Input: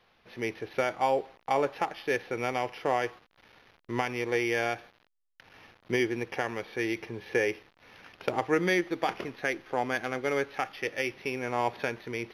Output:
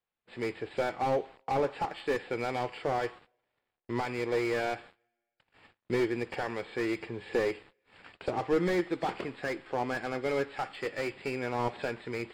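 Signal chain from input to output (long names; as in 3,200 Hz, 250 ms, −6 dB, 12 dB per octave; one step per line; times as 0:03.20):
hearing-aid frequency compression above 3,700 Hz 1.5 to 1
noise gate −52 dBFS, range −27 dB
coupled-rooms reverb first 0.28 s, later 1.5 s, from −27 dB, DRR 19.5 dB
slew-rate limiting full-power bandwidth 41 Hz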